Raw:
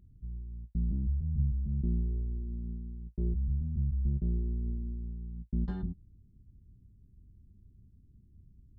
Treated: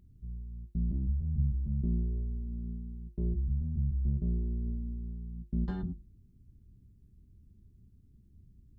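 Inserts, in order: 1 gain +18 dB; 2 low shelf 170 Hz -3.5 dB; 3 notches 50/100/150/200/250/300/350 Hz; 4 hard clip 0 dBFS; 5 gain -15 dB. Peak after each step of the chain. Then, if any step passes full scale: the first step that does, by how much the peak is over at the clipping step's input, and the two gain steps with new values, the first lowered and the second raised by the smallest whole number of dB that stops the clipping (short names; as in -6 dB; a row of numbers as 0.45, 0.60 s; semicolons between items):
-0.5, -3.5, -3.5, -3.5, -18.5 dBFS; no overload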